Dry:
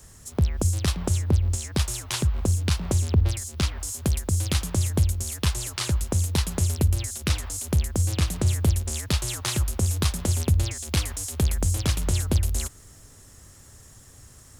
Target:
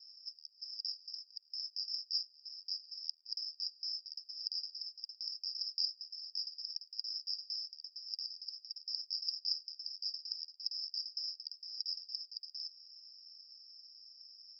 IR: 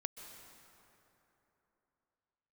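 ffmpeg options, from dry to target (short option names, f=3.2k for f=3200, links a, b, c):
-af "alimiter=limit=-22.5dB:level=0:latency=1,asuperpass=centerf=5100:order=12:qfactor=7.2,volume=10.5dB"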